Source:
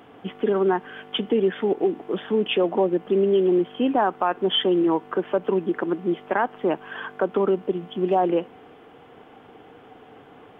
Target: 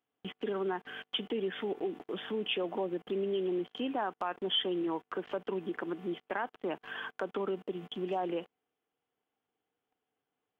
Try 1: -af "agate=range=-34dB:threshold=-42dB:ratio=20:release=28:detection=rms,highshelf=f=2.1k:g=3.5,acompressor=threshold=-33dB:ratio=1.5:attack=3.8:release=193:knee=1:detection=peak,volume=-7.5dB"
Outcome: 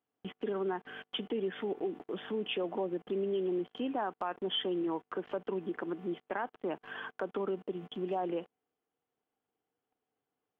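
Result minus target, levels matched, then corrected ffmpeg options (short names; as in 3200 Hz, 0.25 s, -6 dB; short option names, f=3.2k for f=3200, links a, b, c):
4000 Hz band -3.0 dB
-af "agate=range=-34dB:threshold=-42dB:ratio=20:release=28:detection=rms,highshelf=f=2.1k:g=11.5,acompressor=threshold=-33dB:ratio=1.5:attack=3.8:release=193:knee=1:detection=peak,volume=-7.5dB"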